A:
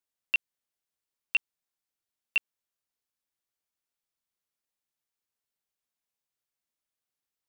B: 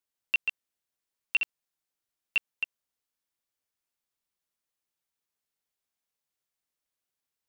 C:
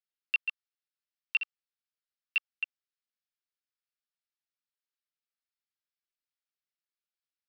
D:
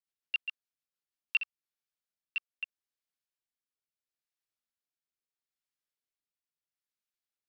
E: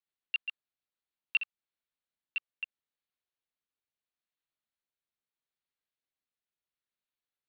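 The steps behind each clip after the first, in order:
delay that plays each chunk backwards 139 ms, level −5 dB
Chebyshev band-pass filter 1,200–5,400 Hz, order 5; transient designer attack +5 dB, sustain 0 dB; level −7 dB
rotating-speaker cabinet horn 7 Hz, later 0.75 Hz, at 0:00.85
Butterworth low-pass 4,500 Hz 96 dB per octave

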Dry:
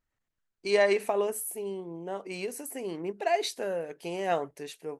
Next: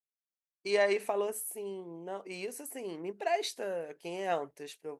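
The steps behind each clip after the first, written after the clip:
downward expander −44 dBFS
low-shelf EQ 140 Hz −8 dB
level −3.5 dB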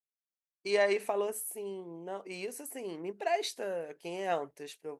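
no processing that can be heard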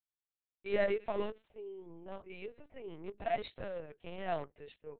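in parallel at −10.5 dB: bit reduction 5 bits
on the sum: linear-prediction vocoder at 8 kHz pitch kept
level −6 dB

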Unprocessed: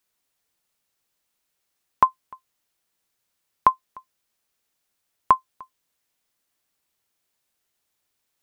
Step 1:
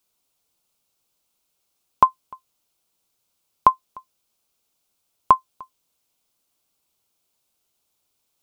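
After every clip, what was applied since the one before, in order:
parametric band 1,800 Hz −12 dB 0.47 octaves
level +3.5 dB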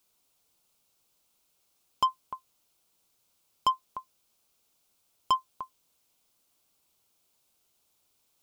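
brickwall limiter −5.5 dBFS, peak gain reduction 4 dB
soft clipping −20.5 dBFS, distortion −6 dB
level +1.5 dB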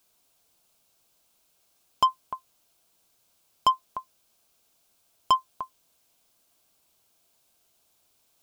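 hollow resonant body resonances 670/1,600 Hz, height 7 dB
level +4 dB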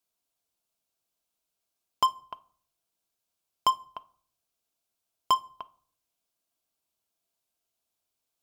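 harmonic generator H 5 −36 dB, 7 −18 dB, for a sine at −13.5 dBFS
on a send at −15 dB: convolution reverb RT60 0.50 s, pre-delay 3 ms
on the sum: level −1.5 dB

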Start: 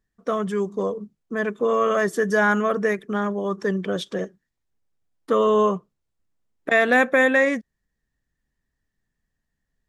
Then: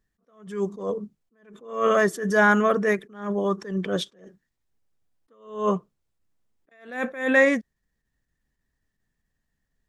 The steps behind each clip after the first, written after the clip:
level that may rise only so fast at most 120 dB per second
level +1.5 dB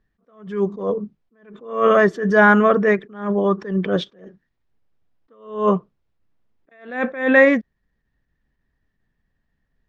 high-frequency loss of the air 220 metres
level +6.5 dB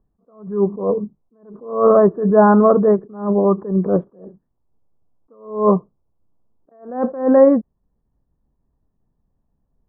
Butterworth low-pass 1,100 Hz 36 dB per octave
level +3.5 dB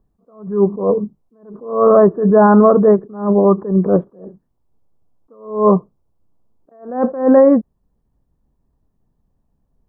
boost into a limiter +4.5 dB
level −1 dB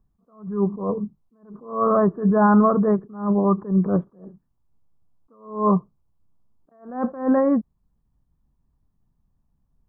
drawn EQ curve 160 Hz 0 dB, 290 Hz −5 dB, 500 Hz −10 dB, 1,200 Hz 0 dB, 1,800 Hz −3 dB
level −2.5 dB

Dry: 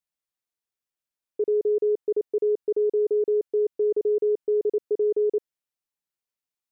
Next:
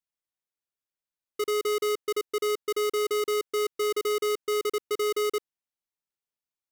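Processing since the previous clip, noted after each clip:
each half-wave held at its own peak
level −7 dB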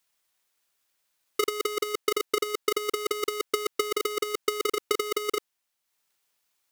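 low-shelf EQ 480 Hz −10 dB
compressor whose output falls as the input rises −37 dBFS, ratio −0.5
transient designer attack +9 dB, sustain −5 dB
level +8.5 dB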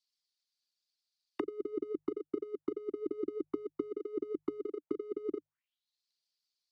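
spectral envelope exaggerated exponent 1.5
envelope filter 300–4,600 Hz, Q 5.3, down, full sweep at −25.5 dBFS
mains-hum notches 50/100/150 Hz

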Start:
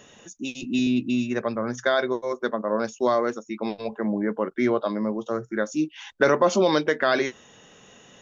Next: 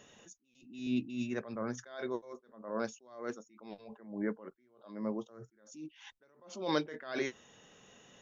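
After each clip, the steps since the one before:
level that may rise only so fast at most 100 dB per second
level −8.5 dB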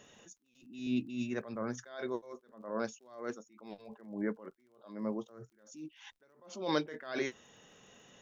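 surface crackle 43 per second −61 dBFS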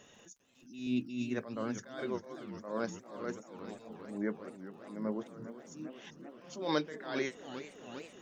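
surface crackle 18 per second −57 dBFS
feedback echo with a swinging delay time 396 ms, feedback 80%, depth 193 cents, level −13 dB

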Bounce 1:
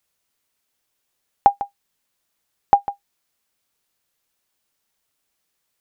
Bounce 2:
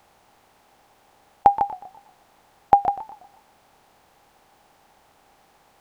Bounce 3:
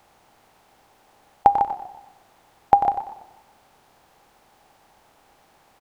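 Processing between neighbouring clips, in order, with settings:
compressor on every frequency bin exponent 0.6; feedback echo with a swinging delay time 121 ms, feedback 43%, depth 156 cents, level −15 dB; level −1 dB
repeating echo 94 ms, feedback 37%, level −10 dB; on a send at −21 dB: convolution reverb RT60 1.2 s, pre-delay 3 ms

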